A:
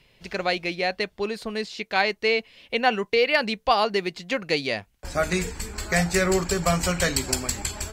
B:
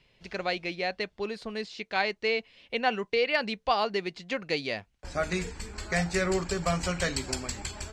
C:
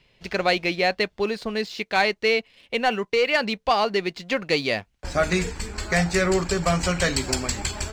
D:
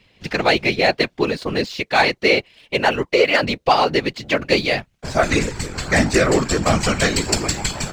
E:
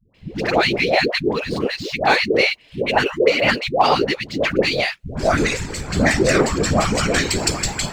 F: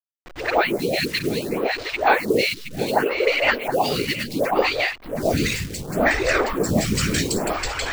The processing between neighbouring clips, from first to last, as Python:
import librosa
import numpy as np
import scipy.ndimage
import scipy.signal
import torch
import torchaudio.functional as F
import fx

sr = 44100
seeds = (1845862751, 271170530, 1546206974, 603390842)

y1 = scipy.signal.sosfilt(scipy.signal.butter(2, 7000.0, 'lowpass', fs=sr, output='sos'), x)
y1 = y1 * librosa.db_to_amplitude(-5.5)
y2 = fx.leveller(y1, sr, passes=1)
y2 = fx.rider(y2, sr, range_db=3, speed_s=2.0)
y2 = y2 * librosa.db_to_amplitude(3.5)
y3 = fx.whisperise(y2, sr, seeds[0])
y3 = y3 * librosa.db_to_amplitude(5.0)
y4 = fx.dispersion(y3, sr, late='highs', ms=146.0, hz=550.0)
y5 = fx.delta_hold(y4, sr, step_db=-28.5)
y5 = y5 + 10.0 ** (-8.0 / 20.0) * np.pad(y5, (int(720 * sr / 1000.0), 0))[:len(y5)]
y5 = fx.stagger_phaser(y5, sr, hz=0.68)